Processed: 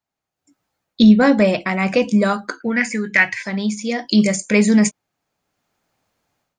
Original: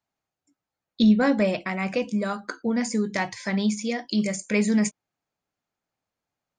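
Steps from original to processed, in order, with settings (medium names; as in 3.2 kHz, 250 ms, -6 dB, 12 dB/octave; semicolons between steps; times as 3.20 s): 2.60–3.43 s: high-order bell 2 kHz +15 dB 1.2 oct; level rider gain up to 16 dB; trim -1 dB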